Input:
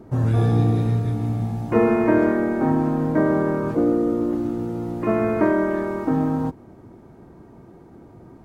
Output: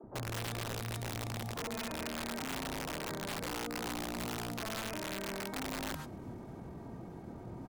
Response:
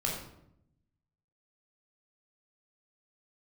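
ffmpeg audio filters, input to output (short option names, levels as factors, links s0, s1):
-filter_complex "[0:a]equalizer=f=400:t=o:w=0.87:g=-2,bandreject=f=50:t=h:w=6,bandreject=f=100:t=h:w=6,bandreject=f=150:t=h:w=6,acrossover=split=340|1400[s0][s1][s2];[s0]adelay=30[s3];[s2]adelay=140[s4];[s3][s1][s4]amix=inputs=3:normalize=0,areverse,acompressor=threshold=0.0251:ratio=8,areverse,alimiter=level_in=2:limit=0.0631:level=0:latency=1:release=69,volume=0.501,atempo=1.1,acrossover=split=120|350[s5][s6][s7];[s5]acompressor=threshold=0.00355:ratio=4[s8];[s6]acompressor=threshold=0.00631:ratio=4[s9];[s7]acompressor=threshold=0.00631:ratio=4[s10];[s8][s9][s10]amix=inputs=3:normalize=0,aeval=exprs='(mod(59.6*val(0)+1,2)-1)/59.6':c=same,adynamicequalizer=threshold=0.00178:dfrequency=1900:dqfactor=0.7:tfrequency=1900:tqfactor=0.7:attack=5:release=100:ratio=0.375:range=2:mode=boostabove:tftype=highshelf,volume=1.26"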